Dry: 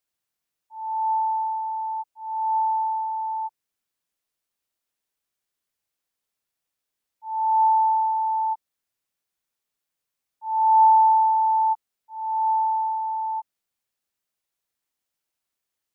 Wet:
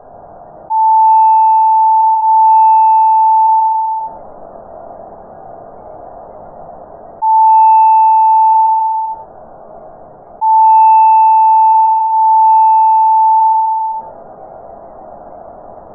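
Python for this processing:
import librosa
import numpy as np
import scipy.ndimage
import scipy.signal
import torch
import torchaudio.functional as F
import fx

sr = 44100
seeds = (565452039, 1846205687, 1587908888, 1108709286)

p1 = fx.rider(x, sr, range_db=10, speed_s=2.0)
p2 = x + (p1 * librosa.db_to_amplitude(0.5))
p3 = 10.0 ** (-6.5 / 20.0) * np.tanh(p2 / 10.0 ** (-6.5 / 20.0))
p4 = fx.lowpass_res(p3, sr, hz=710.0, q=6.3)
p5 = fx.spec_topn(p4, sr, count=64)
p6 = p5 + fx.echo_feedback(p5, sr, ms=130, feedback_pct=35, wet_db=-4.5, dry=0)
p7 = fx.room_shoebox(p6, sr, seeds[0], volume_m3=130.0, walls='furnished', distance_m=1.3)
p8 = fx.env_flatten(p7, sr, amount_pct=70)
y = p8 * librosa.db_to_amplitude(2.5)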